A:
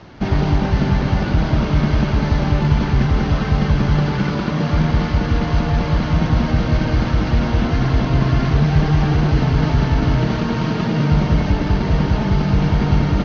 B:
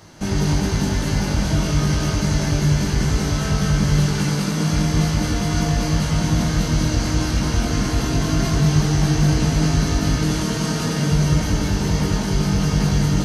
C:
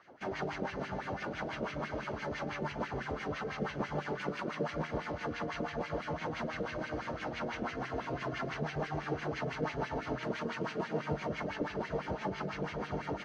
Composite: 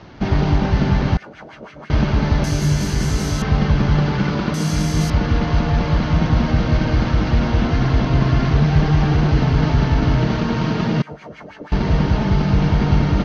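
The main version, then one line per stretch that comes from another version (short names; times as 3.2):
A
1.17–1.9 from C
2.44–3.42 from B
4.54–5.1 from B
11.02–11.72 from C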